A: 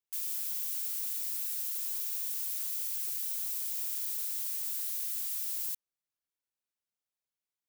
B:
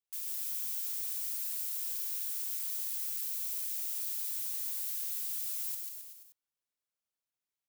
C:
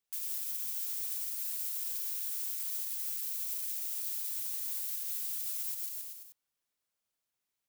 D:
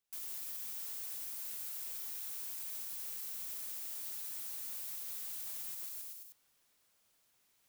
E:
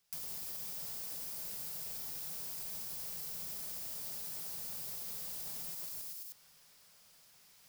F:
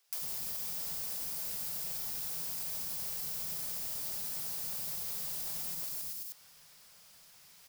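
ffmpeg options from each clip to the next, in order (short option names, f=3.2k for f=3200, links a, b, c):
-af "aecho=1:1:140|266|379.4|481.5|573.3:0.631|0.398|0.251|0.158|0.1,volume=-3.5dB"
-af "alimiter=level_in=7.5dB:limit=-24dB:level=0:latency=1:release=115,volume=-7.5dB,volume=5dB"
-af "areverse,acompressor=mode=upward:threshold=-59dB:ratio=2.5,areverse,asoftclip=type=tanh:threshold=-38.5dB,volume=-1dB"
-filter_complex "[0:a]equalizer=f=160:t=o:w=0.33:g=8,equalizer=f=315:t=o:w=0.33:g=-10,equalizer=f=5k:t=o:w=0.33:g=6,acrossover=split=820[a][b];[b]acompressor=threshold=-52dB:ratio=6[c];[a][c]amix=inputs=2:normalize=0,volume=10dB"
-filter_complex "[0:a]acrossover=split=340[a][b];[a]adelay=90[c];[c][b]amix=inputs=2:normalize=0,volume=4.5dB"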